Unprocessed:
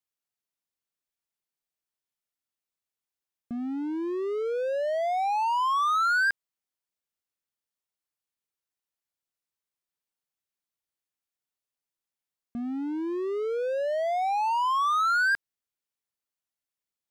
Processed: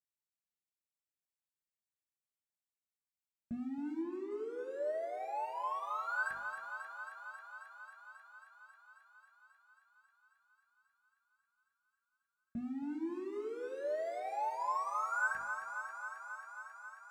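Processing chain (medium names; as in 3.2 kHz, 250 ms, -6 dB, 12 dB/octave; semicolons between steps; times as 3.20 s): 4.02–6.26 s: low-pass 1.5 kHz 6 dB/octave; gate -24 dBFS, range -21 dB; high-pass 45 Hz; bass shelf 87 Hz +11.5 dB; hum notches 50/100/150/200/250/300/350/400 Hz; peak limiter -29 dBFS, peak gain reduction 10 dB; waveshaping leveller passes 1; compression 4:1, threshold -47 dBFS, peak gain reduction 12.5 dB; thinning echo 270 ms, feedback 82%, high-pass 390 Hz, level -7.5 dB; reverberation RT60 0.35 s, pre-delay 3 ms, DRR 0 dB; trim +9 dB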